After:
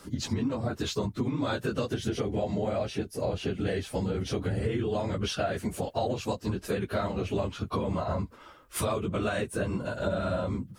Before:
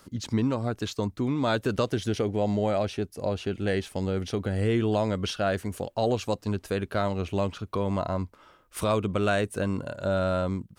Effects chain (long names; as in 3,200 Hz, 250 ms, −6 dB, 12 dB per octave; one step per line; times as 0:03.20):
random phases in long frames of 50 ms
downward compressor, threshold −31 dBFS, peak gain reduction 11.5 dB
level +4.5 dB